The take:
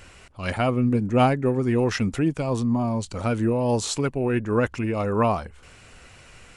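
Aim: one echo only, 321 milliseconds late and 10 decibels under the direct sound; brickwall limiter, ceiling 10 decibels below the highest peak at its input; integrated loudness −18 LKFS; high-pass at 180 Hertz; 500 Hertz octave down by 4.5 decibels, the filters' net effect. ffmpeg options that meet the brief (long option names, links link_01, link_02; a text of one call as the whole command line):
ffmpeg -i in.wav -af "highpass=180,equalizer=frequency=500:width_type=o:gain=-5.5,alimiter=limit=-16.5dB:level=0:latency=1,aecho=1:1:321:0.316,volume=10dB" out.wav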